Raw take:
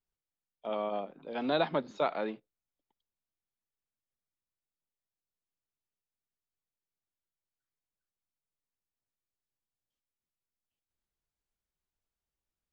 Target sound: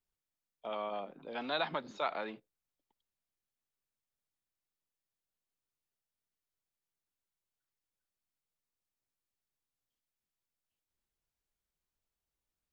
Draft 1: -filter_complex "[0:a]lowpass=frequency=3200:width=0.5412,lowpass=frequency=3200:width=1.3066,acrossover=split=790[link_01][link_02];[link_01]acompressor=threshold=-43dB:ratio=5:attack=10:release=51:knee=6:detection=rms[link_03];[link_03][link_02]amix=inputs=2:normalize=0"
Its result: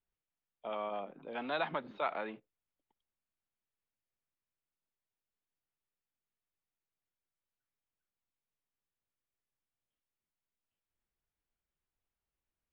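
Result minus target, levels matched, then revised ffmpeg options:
4,000 Hz band −5.5 dB
-filter_complex "[0:a]acrossover=split=790[link_01][link_02];[link_01]acompressor=threshold=-43dB:ratio=5:attack=10:release=51:knee=6:detection=rms[link_03];[link_03][link_02]amix=inputs=2:normalize=0"

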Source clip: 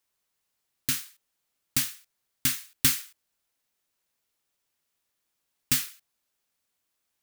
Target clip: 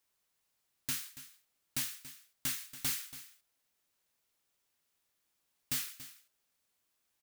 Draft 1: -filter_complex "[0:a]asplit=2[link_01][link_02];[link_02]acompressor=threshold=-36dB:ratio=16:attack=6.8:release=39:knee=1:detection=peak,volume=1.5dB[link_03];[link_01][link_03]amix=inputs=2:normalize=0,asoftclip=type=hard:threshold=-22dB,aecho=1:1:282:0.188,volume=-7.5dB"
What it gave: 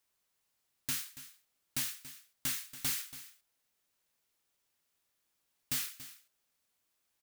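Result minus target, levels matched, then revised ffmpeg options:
downward compressor: peak gain reduction −7 dB
-filter_complex "[0:a]asplit=2[link_01][link_02];[link_02]acompressor=threshold=-43.5dB:ratio=16:attack=6.8:release=39:knee=1:detection=peak,volume=1.5dB[link_03];[link_01][link_03]amix=inputs=2:normalize=0,asoftclip=type=hard:threshold=-22dB,aecho=1:1:282:0.188,volume=-7.5dB"

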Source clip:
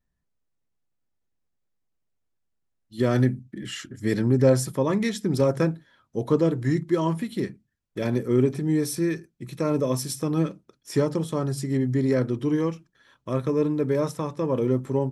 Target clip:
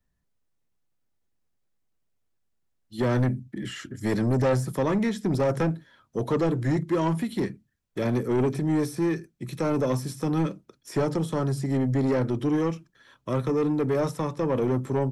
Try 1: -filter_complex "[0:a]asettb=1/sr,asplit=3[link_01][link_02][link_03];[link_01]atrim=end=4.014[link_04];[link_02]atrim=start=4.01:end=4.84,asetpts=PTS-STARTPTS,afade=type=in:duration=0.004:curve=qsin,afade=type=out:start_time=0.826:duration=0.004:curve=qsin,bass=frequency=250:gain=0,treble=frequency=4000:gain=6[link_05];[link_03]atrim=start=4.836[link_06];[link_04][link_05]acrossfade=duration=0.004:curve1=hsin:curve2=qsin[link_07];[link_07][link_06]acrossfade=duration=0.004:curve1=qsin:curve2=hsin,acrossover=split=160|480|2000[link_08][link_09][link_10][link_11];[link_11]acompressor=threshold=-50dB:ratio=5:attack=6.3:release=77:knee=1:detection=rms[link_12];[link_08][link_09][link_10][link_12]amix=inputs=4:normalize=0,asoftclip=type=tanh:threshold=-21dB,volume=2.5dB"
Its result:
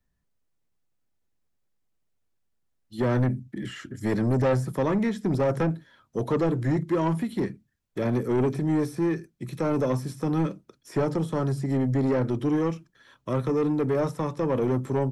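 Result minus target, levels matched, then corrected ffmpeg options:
downward compressor: peak gain reduction +5.5 dB
-filter_complex "[0:a]asettb=1/sr,asplit=3[link_01][link_02][link_03];[link_01]atrim=end=4.014[link_04];[link_02]atrim=start=4.01:end=4.84,asetpts=PTS-STARTPTS,afade=type=in:duration=0.004:curve=qsin,afade=type=out:start_time=0.826:duration=0.004:curve=qsin,bass=frequency=250:gain=0,treble=frequency=4000:gain=6[link_05];[link_03]atrim=start=4.836[link_06];[link_04][link_05]acrossfade=duration=0.004:curve1=hsin:curve2=qsin[link_07];[link_07][link_06]acrossfade=duration=0.004:curve1=qsin:curve2=hsin,acrossover=split=160|480|2000[link_08][link_09][link_10][link_11];[link_11]acompressor=threshold=-43dB:ratio=5:attack=6.3:release=77:knee=1:detection=rms[link_12];[link_08][link_09][link_10][link_12]amix=inputs=4:normalize=0,asoftclip=type=tanh:threshold=-21dB,volume=2.5dB"

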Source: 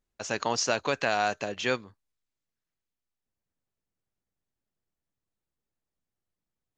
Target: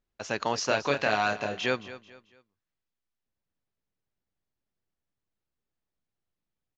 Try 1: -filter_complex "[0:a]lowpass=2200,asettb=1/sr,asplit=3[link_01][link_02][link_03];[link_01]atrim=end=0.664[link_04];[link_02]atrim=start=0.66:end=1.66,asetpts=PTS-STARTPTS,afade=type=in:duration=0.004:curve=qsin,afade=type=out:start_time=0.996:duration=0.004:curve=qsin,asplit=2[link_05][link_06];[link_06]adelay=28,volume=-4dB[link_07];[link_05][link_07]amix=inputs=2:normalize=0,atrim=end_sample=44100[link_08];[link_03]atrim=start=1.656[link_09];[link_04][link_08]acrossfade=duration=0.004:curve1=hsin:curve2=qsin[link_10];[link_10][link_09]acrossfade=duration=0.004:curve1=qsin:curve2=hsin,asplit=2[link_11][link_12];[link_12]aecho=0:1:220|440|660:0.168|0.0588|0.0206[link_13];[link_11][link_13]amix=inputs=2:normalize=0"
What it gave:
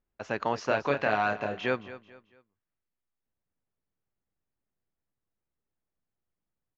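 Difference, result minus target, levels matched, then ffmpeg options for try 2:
4,000 Hz band −7.5 dB
-filter_complex "[0:a]lowpass=5100,asettb=1/sr,asplit=3[link_01][link_02][link_03];[link_01]atrim=end=0.664[link_04];[link_02]atrim=start=0.66:end=1.66,asetpts=PTS-STARTPTS,afade=type=in:duration=0.004:curve=qsin,afade=type=out:start_time=0.996:duration=0.004:curve=qsin,asplit=2[link_05][link_06];[link_06]adelay=28,volume=-4dB[link_07];[link_05][link_07]amix=inputs=2:normalize=0,atrim=end_sample=44100[link_08];[link_03]atrim=start=1.656[link_09];[link_04][link_08]acrossfade=duration=0.004:curve1=hsin:curve2=qsin[link_10];[link_10][link_09]acrossfade=duration=0.004:curve1=qsin:curve2=hsin,asplit=2[link_11][link_12];[link_12]aecho=0:1:220|440|660:0.168|0.0588|0.0206[link_13];[link_11][link_13]amix=inputs=2:normalize=0"

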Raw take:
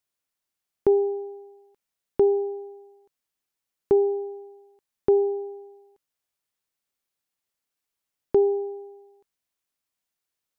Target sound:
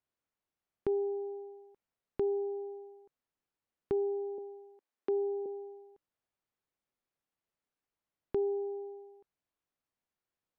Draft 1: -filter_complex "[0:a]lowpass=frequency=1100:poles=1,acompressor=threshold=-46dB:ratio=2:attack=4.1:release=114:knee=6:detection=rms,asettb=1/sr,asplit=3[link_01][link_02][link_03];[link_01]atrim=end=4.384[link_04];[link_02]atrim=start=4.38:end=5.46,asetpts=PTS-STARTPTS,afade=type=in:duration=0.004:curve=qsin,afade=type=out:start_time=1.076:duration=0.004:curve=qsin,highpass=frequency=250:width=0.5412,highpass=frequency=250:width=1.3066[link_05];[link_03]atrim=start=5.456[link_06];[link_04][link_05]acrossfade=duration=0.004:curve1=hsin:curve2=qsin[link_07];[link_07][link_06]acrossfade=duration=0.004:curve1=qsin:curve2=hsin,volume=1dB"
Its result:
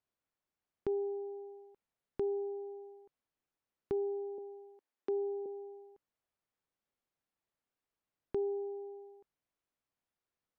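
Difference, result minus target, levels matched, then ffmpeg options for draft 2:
downward compressor: peak gain reduction +3 dB
-filter_complex "[0:a]lowpass=frequency=1100:poles=1,acompressor=threshold=-40dB:ratio=2:attack=4.1:release=114:knee=6:detection=rms,asettb=1/sr,asplit=3[link_01][link_02][link_03];[link_01]atrim=end=4.384[link_04];[link_02]atrim=start=4.38:end=5.46,asetpts=PTS-STARTPTS,afade=type=in:duration=0.004:curve=qsin,afade=type=out:start_time=1.076:duration=0.004:curve=qsin,highpass=frequency=250:width=0.5412,highpass=frequency=250:width=1.3066[link_05];[link_03]atrim=start=5.456[link_06];[link_04][link_05]acrossfade=duration=0.004:curve1=hsin:curve2=qsin[link_07];[link_07][link_06]acrossfade=duration=0.004:curve1=qsin:curve2=hsin,volume=1dB"

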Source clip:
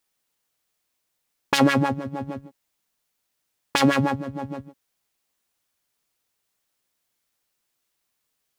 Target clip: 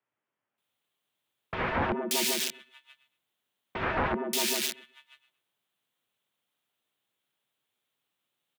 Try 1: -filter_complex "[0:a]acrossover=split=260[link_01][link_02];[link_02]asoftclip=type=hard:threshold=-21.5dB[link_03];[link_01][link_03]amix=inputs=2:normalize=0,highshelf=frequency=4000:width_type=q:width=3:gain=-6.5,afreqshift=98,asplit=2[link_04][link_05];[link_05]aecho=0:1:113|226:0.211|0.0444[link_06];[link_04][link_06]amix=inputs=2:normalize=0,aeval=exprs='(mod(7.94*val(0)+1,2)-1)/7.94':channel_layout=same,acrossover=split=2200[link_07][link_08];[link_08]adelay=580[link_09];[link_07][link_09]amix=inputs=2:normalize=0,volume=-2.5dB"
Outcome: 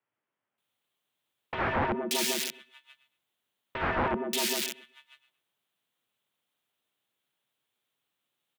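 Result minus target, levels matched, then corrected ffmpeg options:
hard clipping: distortion +7 dB
-filter_complex "[0:a]acrossover=split=260[link_01][link_02];[link_02]asoftclip=type=hard:threshold=-14dB[link_03];[link_01][link_03]amix=inputs=2:normalize=0,highshelf=frequency=4000:width_type=q:width=3:gain=-6.5,afreqshift=98,asplit=2[link_04][link_05];[link_05]aecho=0:1:113|226:0.211|0.0444[link_06];[link_04][link_06]amix=inputs=2:normalize=0,aeval=exprs='(mod(7.94*val(0)+1,2)-1)/7.94':channel_layout=same,acrossover=split=2200[link_07][link_08];[link_08]adelay=580[link_09];[link_07][link_09]amix=inputs=2:normalize=0,volume=-2.5dB"

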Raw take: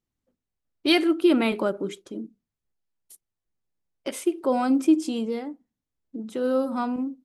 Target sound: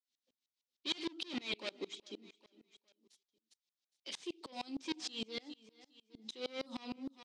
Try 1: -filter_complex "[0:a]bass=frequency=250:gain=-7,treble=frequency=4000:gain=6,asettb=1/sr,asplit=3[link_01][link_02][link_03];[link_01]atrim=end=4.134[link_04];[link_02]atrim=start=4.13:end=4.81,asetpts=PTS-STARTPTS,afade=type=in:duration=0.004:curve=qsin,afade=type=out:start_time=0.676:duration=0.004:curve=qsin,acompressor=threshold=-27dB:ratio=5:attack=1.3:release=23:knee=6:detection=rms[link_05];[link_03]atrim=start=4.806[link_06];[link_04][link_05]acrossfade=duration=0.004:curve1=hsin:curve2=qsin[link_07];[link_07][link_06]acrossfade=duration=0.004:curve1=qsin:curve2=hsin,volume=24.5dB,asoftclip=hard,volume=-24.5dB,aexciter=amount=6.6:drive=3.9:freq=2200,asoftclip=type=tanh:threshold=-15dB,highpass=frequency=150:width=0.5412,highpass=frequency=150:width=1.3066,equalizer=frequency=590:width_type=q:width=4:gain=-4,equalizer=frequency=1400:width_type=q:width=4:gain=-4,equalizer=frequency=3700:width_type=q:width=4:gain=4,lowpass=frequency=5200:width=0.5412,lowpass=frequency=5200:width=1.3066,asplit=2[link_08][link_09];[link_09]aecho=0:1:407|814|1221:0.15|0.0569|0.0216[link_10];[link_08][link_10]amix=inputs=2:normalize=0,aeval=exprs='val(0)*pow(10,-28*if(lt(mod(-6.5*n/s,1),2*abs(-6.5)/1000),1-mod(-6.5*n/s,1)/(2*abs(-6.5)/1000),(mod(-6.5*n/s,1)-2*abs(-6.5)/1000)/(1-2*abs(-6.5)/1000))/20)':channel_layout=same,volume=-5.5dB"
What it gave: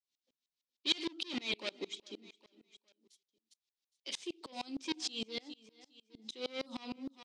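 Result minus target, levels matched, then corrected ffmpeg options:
soft clipping: distortion −5 dB
-filter_complex "[0:a]bass=frequency=250:gain=-7,treble=frequency=4000:gain=6,asettb=1/sr,asplit=3[link_01][link_02][link_03];[link_01]atrim=end=4.134[link_04];[link_02]atrim=start=4.13:end=4.81,asetpts=PTS-STARTPTS,afade=type=in:duration=0.004:curve=qsin,afade=type=out:start_time=0.676:duration=0.004:curve=qsin,acompressor=threshold=-27dB:ratio=5:attack=1.3:release=23:knee=6:detection=rms[link_05];[link_03]atrim=start=4.806[link_06];[link_04][link_05]acrossfade=duration=0.004:curve1=hsin:curve2=qsin[link_07];[link_07][link_06]acrossfade=duration=0.004:curve1=qsin:curve2=hsin,volume=24.5dB,asoftclip=hard,volume=-24.5dB,aexciter=amount=6.6:drive=3.9:freq=2200,asoftclip=type=tanh:threshold=-22.5dB,highpass=frequency=150:width=0.5412,highpass=frequency=150:width=1.3066,equalizer=frequency=590:width_type=q:width=4:gain=-4,equalizer=frequency=1400:width_type=q:width=4:gain=-4,equalizer=frequency=3700:width_type=q:width=4:gain=4,lowpass=frequency=5200:width=0.5412,lowpass=frequency=5200:width=1.3066,asplit=2[link_08][link_09];[link_09]aecho=0:1:407|814|1221:0.15|0.0569|0.0216[link_10];[link_08][link_10]amix=inputs=2:normalize=0,aeval=exprs='val(0)*pow(10,-28*if(lt(mod(-6.5*n/s,1),2*abs(-6.5)/1000),1-mod(-6.5*n/s,1)/(2*abs(-6.5)/1000),(mod(-6.5*n/s,1)-2*abs(-6.5)/1000)/(1-2*abs(-6.5)/1000))/20)':channel_layout=same,volume=-5.5dB"

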